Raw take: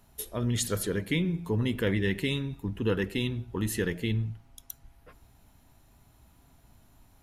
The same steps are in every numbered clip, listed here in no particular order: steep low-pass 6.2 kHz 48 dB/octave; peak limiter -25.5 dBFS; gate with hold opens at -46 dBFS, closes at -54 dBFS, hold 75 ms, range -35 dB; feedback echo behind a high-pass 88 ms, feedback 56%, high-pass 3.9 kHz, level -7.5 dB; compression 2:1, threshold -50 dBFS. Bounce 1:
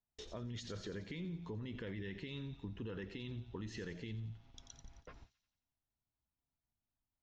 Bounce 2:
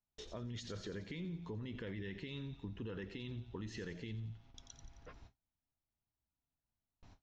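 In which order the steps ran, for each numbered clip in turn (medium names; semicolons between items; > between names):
peak limiter > steep low-pass > gate with hold > feedback echo behind a high-pass > compression; peak limiter > feedback echo behind a high-pass > gate with hold > steep low-pass > compression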